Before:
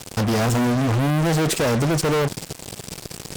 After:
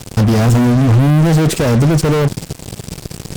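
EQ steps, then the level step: bass shelf 270 Hz +10.5 dB; +2.5 dB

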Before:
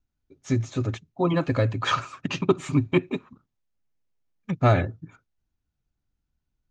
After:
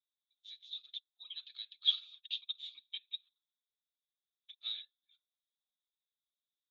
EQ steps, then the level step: Butterworth band-pass 3.6 kHz, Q 7.3; +7.0 dB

